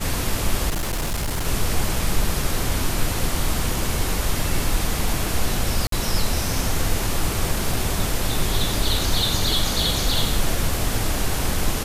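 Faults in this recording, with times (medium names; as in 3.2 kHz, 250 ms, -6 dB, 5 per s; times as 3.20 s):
0.69–1.47 s: clipped -20.5 dBFS
5.87–5.92 s: dropout 53 ms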